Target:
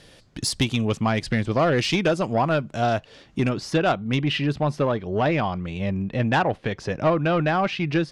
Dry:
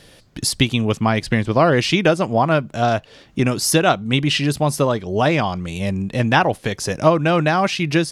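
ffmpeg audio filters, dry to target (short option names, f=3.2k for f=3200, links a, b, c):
-af "asetnsamples=n=441:p=0,asendcmd='3.49 lowpass f 3000',lowpass=9.4k,asoftclip=type=tanh:threshold=-9.5dB,volume=-3dB"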